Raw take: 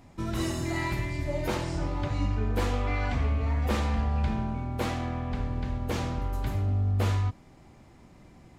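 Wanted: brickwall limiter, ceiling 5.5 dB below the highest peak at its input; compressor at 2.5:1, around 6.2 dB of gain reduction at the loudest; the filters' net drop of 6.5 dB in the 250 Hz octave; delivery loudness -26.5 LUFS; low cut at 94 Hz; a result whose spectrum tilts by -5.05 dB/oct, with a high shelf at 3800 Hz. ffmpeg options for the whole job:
-af "highpass=94,equalizer=f=250:t=o:g=-8.5,highshelf=f=3.8k:g=5.5,acompressor=threshold=-35dB:ratio=2.5,volume=12dB,alimiter=limit=-17dB:level=0:latency=1"

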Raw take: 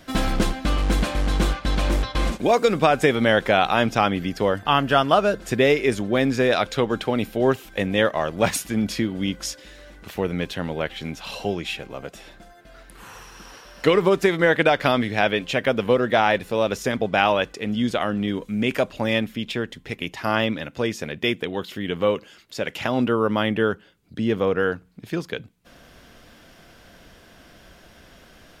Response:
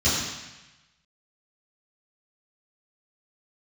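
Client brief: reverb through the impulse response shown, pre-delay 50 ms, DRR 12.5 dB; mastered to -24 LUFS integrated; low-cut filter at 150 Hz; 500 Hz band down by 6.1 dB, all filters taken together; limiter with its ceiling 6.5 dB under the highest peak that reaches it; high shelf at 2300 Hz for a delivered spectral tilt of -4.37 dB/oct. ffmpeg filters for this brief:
-filter_complex "[0:a]highpass=150,equalizer=f=500:t=o:g=-7,highshelf=f=2.3k:g=-8.5,alimiter=limit=-12.5dB:level=0:latency=1,asplit=2[a][b];[1:a]atrim=start_sample=2205,adelay=50[c];[b][c]afir=irnorm=-1:irlink=0,volume=-28dB[d];[a][d]amix=inputs=2:normalize=0,volume=3.5dB"

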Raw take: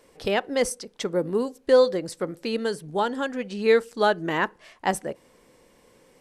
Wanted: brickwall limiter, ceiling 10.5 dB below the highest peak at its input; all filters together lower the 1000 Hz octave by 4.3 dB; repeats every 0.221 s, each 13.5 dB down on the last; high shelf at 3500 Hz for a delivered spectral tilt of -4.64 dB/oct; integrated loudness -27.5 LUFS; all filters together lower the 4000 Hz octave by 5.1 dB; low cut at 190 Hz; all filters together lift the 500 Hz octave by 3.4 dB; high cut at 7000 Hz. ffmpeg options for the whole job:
-af "highpass=190,lowpass=7k,equalizer=f=500:t=o:g=5.5,equalizer=f=1k:t=o:g=-8,highshelf=f=3.5k:g=4.5,equalizer=f=4k:t=o:g=-9,alimiter=limit=-15.5dB:level=0:latency=1,aecho=1:1:221|442:0.211|0.0444,volume=-0.5dB"

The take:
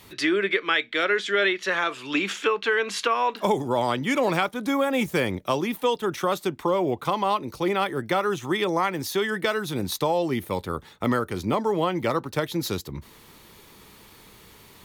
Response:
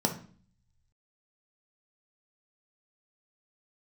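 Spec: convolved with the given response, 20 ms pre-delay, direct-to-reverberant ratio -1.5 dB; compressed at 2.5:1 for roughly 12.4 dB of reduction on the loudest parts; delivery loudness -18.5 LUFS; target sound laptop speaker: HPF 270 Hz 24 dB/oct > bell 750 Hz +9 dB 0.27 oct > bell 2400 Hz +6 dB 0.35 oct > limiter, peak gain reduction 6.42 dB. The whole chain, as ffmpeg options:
-filter_complex "[0:a]acompressor=threshold=-38dB:ratio=2.5,asplit=2[a][b];[1:a]atrim=start_sample=2205,adelay=20[c];[b][c]afir=irnorm=-1:irlink=0,volume=-7dB[d];[a][d]amix=inputs=2:normalize=0,highpass=f=270:w=0.5412,highpass=f=270:w=1.3066,equalizer=f=750:t=o:w=0.27:g=9,equalizer=f=2.4k:t=o:w=0.35:g=6,volume=12.5dB,alimiter=limit=-7.5dB:level=0:latency=1"

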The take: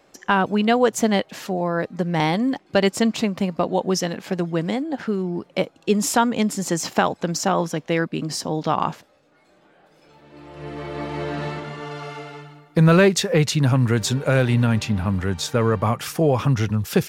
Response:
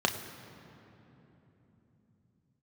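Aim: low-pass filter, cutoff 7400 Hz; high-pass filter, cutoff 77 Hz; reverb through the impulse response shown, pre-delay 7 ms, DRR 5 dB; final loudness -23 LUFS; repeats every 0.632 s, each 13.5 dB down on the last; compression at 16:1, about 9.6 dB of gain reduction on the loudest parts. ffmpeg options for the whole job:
-filter_complex "[0:a]highpass=77,lowpass=7.4k,acompressor=threshold=-20dB:ratio=16,aecho=1:1:632|1264:0.211|0.0444,asplit=2[a][b];[1:a]atrim=start_sample=2205,adelay=7[c];[b][c]afir=irnorm=-1:irlink=0,volume=-15.5dB[d];[a][d]amix=inputs=2:normalize=0,volume=2dB"

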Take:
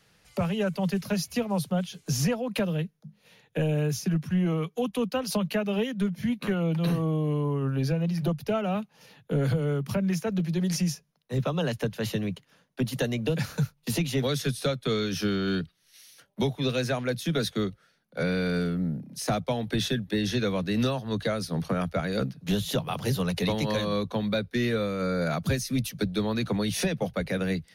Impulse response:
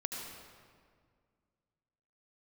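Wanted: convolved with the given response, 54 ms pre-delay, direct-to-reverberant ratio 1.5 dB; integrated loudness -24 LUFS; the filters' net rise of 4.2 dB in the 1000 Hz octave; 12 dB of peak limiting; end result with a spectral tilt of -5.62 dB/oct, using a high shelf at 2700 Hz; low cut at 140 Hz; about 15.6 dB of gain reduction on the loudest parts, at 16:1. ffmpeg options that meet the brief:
-filter_complex "[0:a]highpass=140,equalizer=f=1k:t=o:g=7,highshelf=f=2.7k:g=-7,acompressor=threshold=-38dB:ratio=16,alimiter=level_in=13dB:limit=-24dB:level=0:latency=1,volume=-13dB,asplit=2[a][b];[1:a]atrim=start_sample=2205,adelay=54[c];[b][c]afir=irnorm=-1:irlink=0,volume=-3dB[d];[a][d]amix=inputs=2:normalize=0,volume=19.5dB"

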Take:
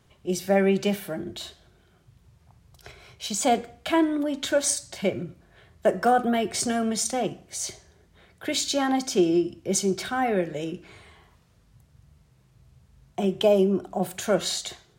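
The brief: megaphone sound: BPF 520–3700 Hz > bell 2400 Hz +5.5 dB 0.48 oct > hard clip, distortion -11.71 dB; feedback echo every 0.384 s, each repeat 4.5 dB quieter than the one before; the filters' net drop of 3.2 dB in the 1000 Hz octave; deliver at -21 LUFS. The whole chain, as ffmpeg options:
-af "highpass=520,lowpass=3.7k,equalizer=f=1k:t=o:g=-4,equalizer=f=2.4k:t=o:w=0.48:g=5.5,aecho=1:1:384|768|1152|1536|1920|2304|2688|3072|3456:0.596|0.357|0.214|0.129|0.0772|0.0463|0.0278|0.0167|0.01,asoftclip=type=hard:threshold=-23.5dB,volume=10dB"

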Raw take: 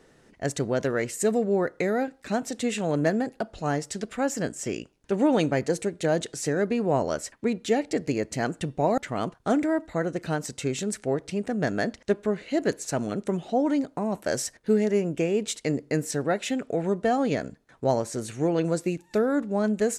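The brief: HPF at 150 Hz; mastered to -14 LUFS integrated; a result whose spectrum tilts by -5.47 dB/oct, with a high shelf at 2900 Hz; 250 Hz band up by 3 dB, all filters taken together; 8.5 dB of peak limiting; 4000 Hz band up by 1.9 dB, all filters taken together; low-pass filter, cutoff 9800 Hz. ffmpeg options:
-af "highpass=150,lowpass=9.8k,equalizer=f=250:t=o:g=4.5,highshelf=f=2.9k:g=-5,equalizer=f=4k:t=o:g=6.5,volume=14dB,alimiter=limit=-3dB:level=0:latency=1"

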